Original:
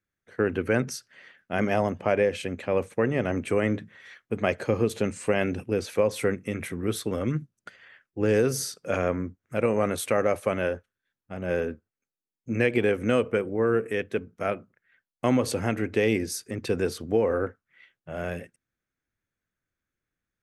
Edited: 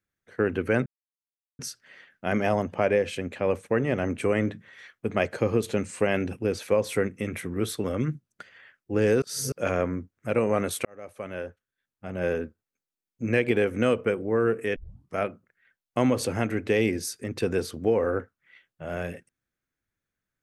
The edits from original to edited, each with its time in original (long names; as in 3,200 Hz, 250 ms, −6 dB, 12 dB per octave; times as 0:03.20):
0:00.86: splice in silence 0.73 s
0:08.49–0:08.79: reverse
0:10.12–0:11.39: fade in
0:14.03: tape start 0.39 s